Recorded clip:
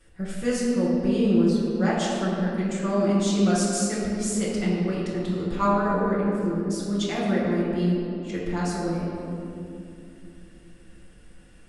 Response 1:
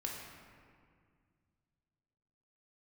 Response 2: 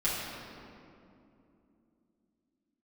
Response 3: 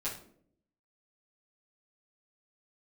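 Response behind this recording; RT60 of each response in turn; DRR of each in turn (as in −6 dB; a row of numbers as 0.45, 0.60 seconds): 2; 2.0, 2.8, 0.60 seconds; −2.0, −9.5, −11.5 decibels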